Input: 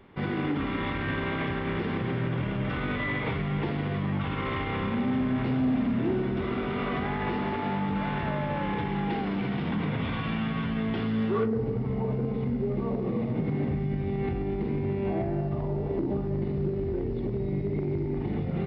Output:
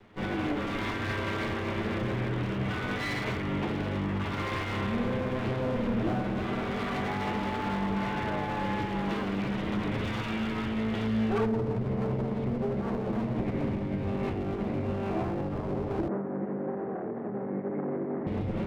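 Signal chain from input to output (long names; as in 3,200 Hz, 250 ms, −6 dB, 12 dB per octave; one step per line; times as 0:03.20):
lower of the sound and its delayed copy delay 9.4 ms
0:16.08–0:18.27: elliptic band-pass filter 170–1,800 Hz, stop band 50 dB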